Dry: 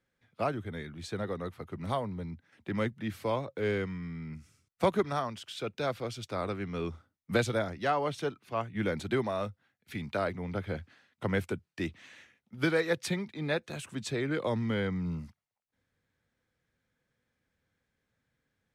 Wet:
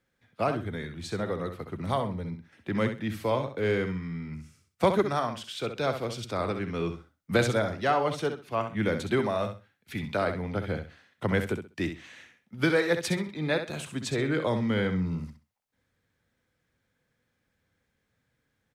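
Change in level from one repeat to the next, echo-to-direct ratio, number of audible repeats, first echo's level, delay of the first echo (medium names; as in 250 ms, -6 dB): -13.0 dB, -8.5 dB, 3, -8.5 dB, 65 ms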